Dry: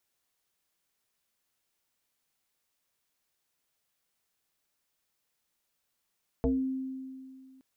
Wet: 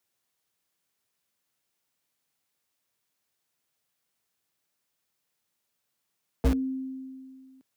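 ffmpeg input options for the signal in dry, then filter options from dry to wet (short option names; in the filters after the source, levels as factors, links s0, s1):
-f lavfi -i "aevalsrc='0.075*pow(10,-3*t/2.23)*sin(2*PI*263*t+2*pow(10,-3*t/0.31)*sin(2*PI*0.76*263*t))':d=1.17:s=44100"
-filter_complex "[0:a]equalizer=f=63:t=o:w=1.7:g=11.5,acrossover=split=100|290[s0][s1][s2];[s0]acrusher=bits=4:mix=0:aa=0.000001[s3];[s3][s1][s2]amix=inputs=3:normalize=0"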